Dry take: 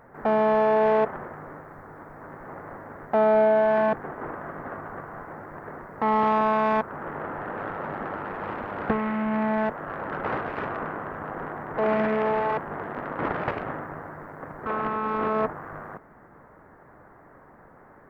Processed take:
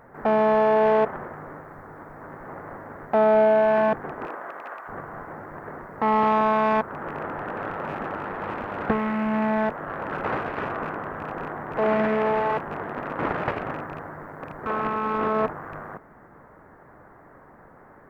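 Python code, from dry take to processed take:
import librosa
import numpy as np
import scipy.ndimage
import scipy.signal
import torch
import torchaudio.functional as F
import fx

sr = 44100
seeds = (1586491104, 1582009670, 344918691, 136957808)

y = fx.rattle_buzz(x, sr, strikes_db=-38.0, level_db=-36.0)
y = fx.highpass(y, sr, hz=fx.line((4.25, 310.0), (4.87, 880.0)), slope=12, at=(4.25, 4.87), fade=0.02)
y = F.gain(torch.from_numpy(y), 1.5).numpy()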